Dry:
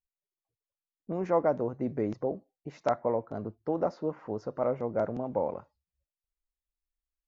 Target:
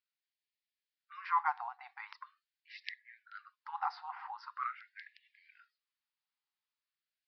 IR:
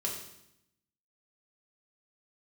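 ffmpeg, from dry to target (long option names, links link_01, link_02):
-af "aresample=11025,aresample=44100,afftfilt=real='re*gte(b*sr/1024,700*pow(1700/700,0.5+0.5*sin(2*PI*0.43*pts/sr)))':imag='im*gte(b*sr/1024,700*pow(1700/700,0.5+0.5*sin(2*PI*0.43*pts/sr)))':win_size=1024:overlap=0.75,volume=6dB"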